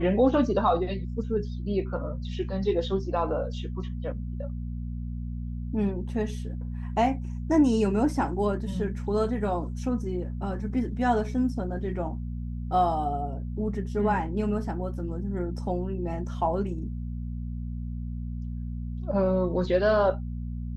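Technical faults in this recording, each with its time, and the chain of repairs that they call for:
hum 60 Hz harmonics 4 -33 dBFS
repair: de-hum 60 Hz, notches 4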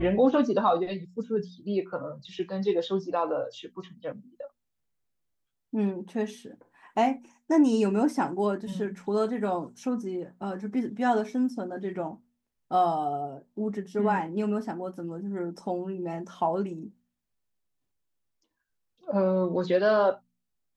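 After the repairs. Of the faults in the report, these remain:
none

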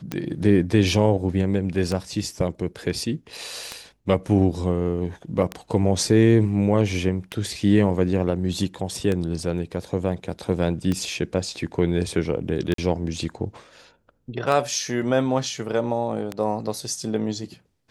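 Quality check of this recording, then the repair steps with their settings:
tick 33 1/3 rpm -12 dBFS
12.74–12.78 gap 43 ms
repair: de-click; interpolate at 12.74, 43 ms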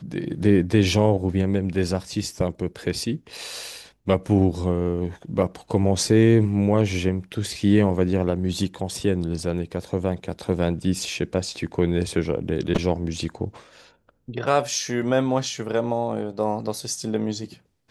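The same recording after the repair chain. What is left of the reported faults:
none

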